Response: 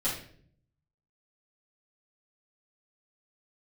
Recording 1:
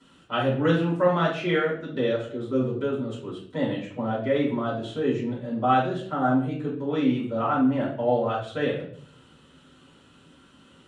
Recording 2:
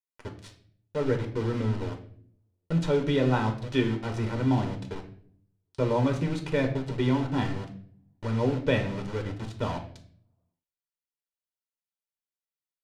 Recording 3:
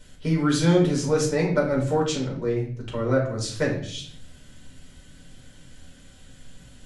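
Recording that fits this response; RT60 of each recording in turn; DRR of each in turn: 1; 0.55, 0.55, 0.55 seconds; −8.5, 3.5, −3.5 decibels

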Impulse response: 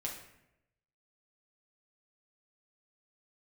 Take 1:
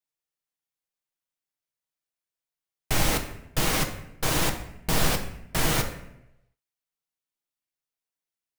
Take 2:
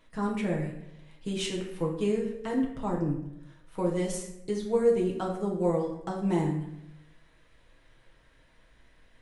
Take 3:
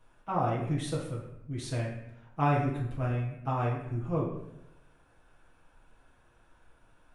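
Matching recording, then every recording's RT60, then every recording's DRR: 2; 0.85, 0.85, 0.85 seconds; 3.5, −2.5, −7.0 decibels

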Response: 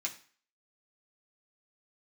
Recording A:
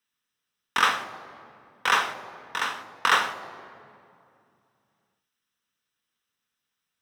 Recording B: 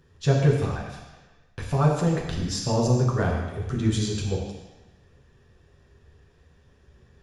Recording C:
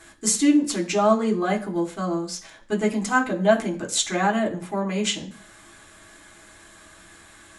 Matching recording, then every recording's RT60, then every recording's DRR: C; 2.5, 1.1, 0.45 seconds; 10.0, −4.0, −2.5 decibels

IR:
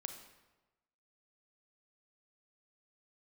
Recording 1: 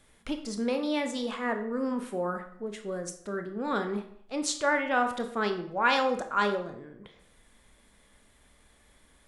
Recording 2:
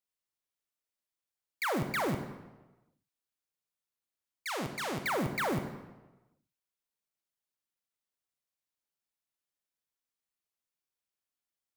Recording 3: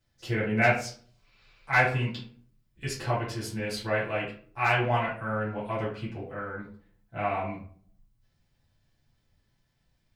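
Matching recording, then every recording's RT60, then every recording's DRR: 2; 0.65, 1.1, 0.50 seconds; 6.5, 6.5, −9.5 decibels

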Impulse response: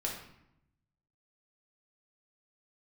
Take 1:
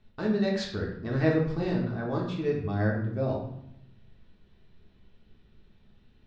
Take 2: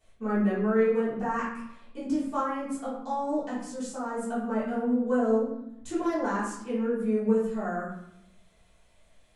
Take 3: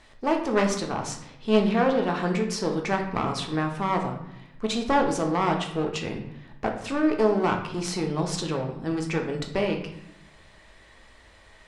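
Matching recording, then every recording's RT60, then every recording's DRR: 1; 0.80, 0.80, 0.80 seconds; −2.5, −12.5, 2.5 decibels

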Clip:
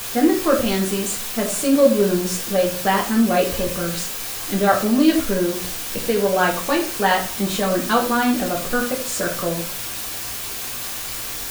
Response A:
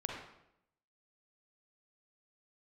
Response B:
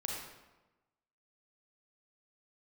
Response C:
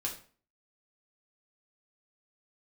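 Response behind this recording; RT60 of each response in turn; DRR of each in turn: C; 0.80, 1.1, 0.40 seconds; −0.5, −2.0, −2.0 decibels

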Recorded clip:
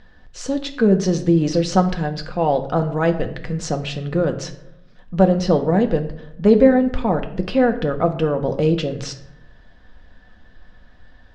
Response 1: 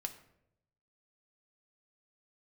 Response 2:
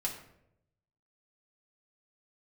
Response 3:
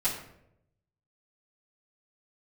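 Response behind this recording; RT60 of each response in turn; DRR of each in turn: 1; 0.80, 0.80, 0.80 seconds; 5.0, −3.0, −12.0 decibels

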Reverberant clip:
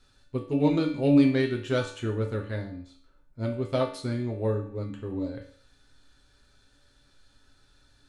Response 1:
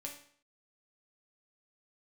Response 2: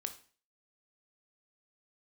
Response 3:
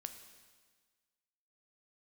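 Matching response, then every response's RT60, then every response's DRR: 1; 0.55, 0.40, 1.5 seconds; −1.0, 7.0, 7.5 decibels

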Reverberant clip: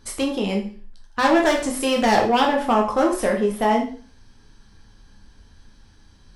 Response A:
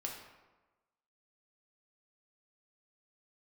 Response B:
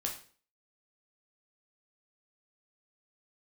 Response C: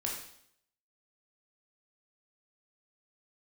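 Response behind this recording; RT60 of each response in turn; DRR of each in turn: B; 1.2, 0.45, 0.65 seconds; −1.0, 0.0, −2.0 decibels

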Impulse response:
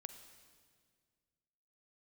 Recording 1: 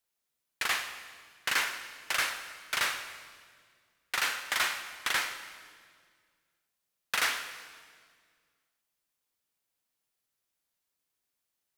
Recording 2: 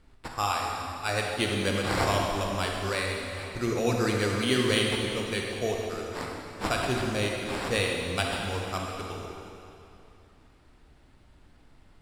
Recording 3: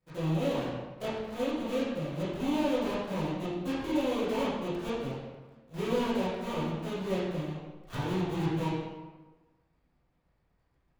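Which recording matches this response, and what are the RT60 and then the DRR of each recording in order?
1; 1.9, 2.8, 1.3 seconds; 8.5, −0.5, −12.5 decibels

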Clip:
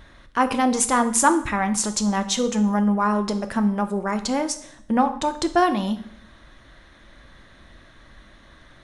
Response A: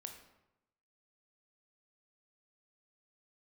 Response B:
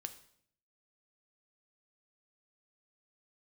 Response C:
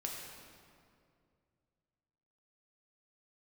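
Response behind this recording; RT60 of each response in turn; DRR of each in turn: B; 0.90, 0.65, 2.3 seconds; 4.0, 8.5, −1.5 decibels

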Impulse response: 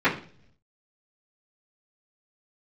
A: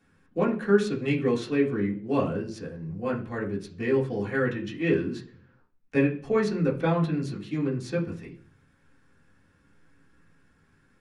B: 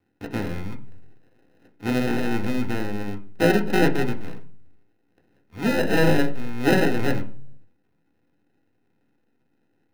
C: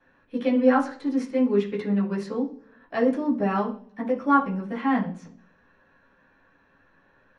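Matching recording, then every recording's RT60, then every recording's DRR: C; 0.50, 0.50, 0.50 seconds; −6.0, 2.0, −15.5 decibels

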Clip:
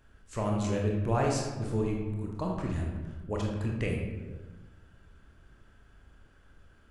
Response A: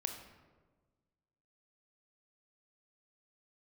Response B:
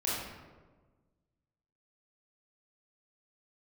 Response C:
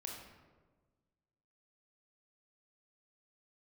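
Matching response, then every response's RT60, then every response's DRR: C; 1.4, 1.4, 1.4 seconds; 4.5, −7.5, −1.0 decibels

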